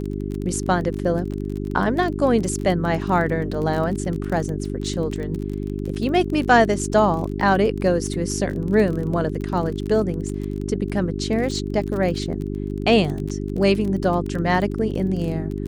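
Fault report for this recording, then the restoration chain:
crackle 29/s -27 dBFS
hum 50 Hz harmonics 8 -27 dBFS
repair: de-click; de-hum 50 Hz, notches 8

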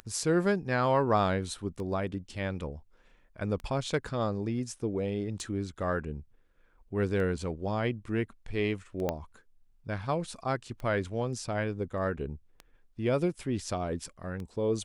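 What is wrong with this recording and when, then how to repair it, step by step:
tick 33 1/3 rpm -27 dBFS
9.09 pop -16 dBFS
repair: de-click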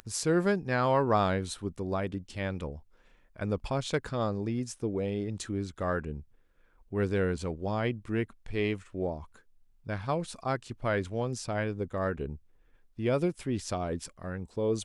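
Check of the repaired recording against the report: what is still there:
9.09 pop

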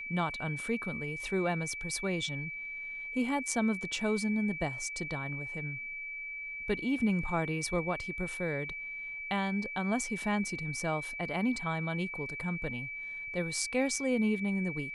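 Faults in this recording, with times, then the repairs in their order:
tone 2300 Hz -38 dBFS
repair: notch 2300 Hz, Q 30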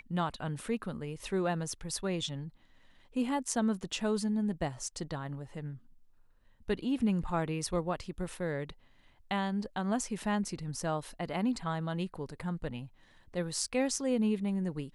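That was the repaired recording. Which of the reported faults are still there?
none

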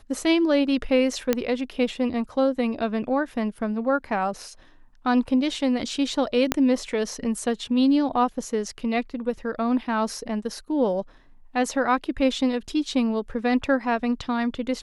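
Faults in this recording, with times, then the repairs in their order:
1.33 pop -7 dBFS
6.52 pop -5 dBFS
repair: de-click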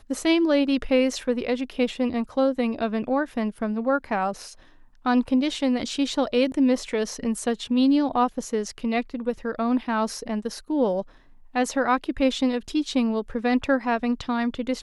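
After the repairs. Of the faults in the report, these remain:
6.52 pop

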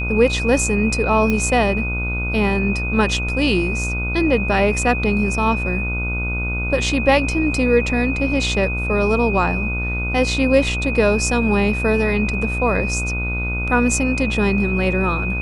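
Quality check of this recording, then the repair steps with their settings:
buzz 60 Hz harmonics 25 -24 dBFS
tone 2500 Hz -24 dBFS
1.3 pop -8 dBFS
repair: de-click; notch 2500 Hz, Q 30; de-hum 60 Hz, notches 25

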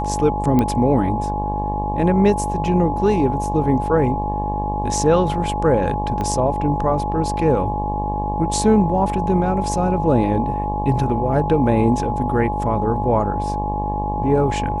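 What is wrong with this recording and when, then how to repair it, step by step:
buzz 50 Hz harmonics 22 -25 dBFS
tone 840 Hz -23 dBFS
0.59 pop -7 dBFS
6.21 pop -13 dBFS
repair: de-click; de-hum 50 Hz, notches 22; notch 840 Hz, Q 30

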